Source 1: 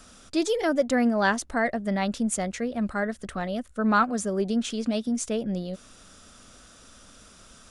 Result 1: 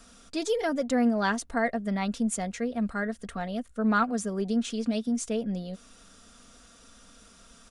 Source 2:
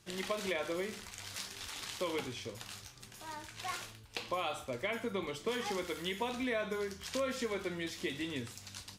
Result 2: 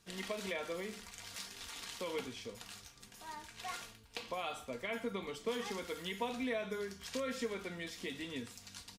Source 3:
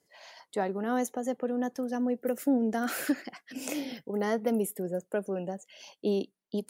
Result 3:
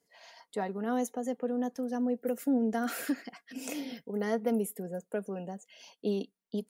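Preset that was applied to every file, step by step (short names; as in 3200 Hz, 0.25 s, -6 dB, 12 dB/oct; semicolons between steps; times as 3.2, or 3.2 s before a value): comb 4.3 ms, depth 44%; gain -4 dB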